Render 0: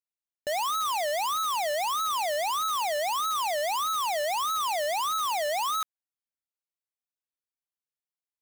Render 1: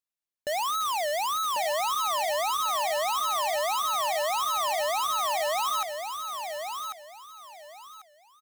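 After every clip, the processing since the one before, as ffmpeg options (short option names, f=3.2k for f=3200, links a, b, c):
-af "aecho=1:1:1094|2188|3282:0.473|0.118|0.0296"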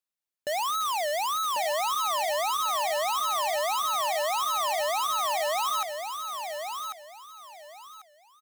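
-af "lowshelf=f=62:g=-10.5"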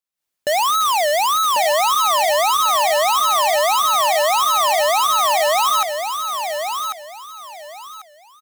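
-af "dynaudnorm=f=120:g=3:m=12dB,volume=-1dB"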